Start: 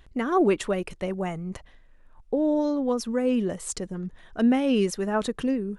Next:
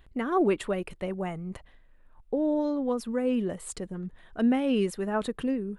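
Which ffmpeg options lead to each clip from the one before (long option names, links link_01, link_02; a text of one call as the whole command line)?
ffmpeg -i in.wav -af "equalizer=frequency=5900:width=2.3:gain=-10,volume=-3dB" out.wav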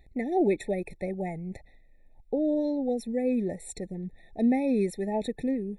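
ffmpeg -i in.wav -af "afftfilt=real='re*eq(mod(floor(b*sr/1024/870),2),0)':imag='im*eq(mod(floor(b*sr/1024/870),2),0)':win_size=1024:overlap=0.75" out.wav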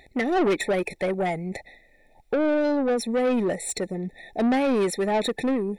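ffmpeg -i in.wav -filter_complex "[0:a]asplit=2[link_01][link_02];[link_02]highpass=frequency=720:poles=1,volume=22dB,asoftclip=type=tanh:threshold=-15dB[link_03];[link_01][link_03]amix=inputs=2:normalize=0,lowpass=frequency=7100:poles=1,volume=-6dB" out.wav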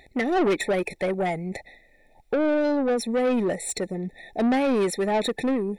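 ffmpeg -i in.wav -af anull out.wav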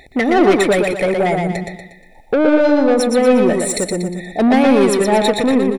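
ffmpeg -i in.wav -af "aecho=1:1:119|238|357|476|595:0.631|0.265|0.111|0.0467|0.0196,volume=8.5dB" out.wav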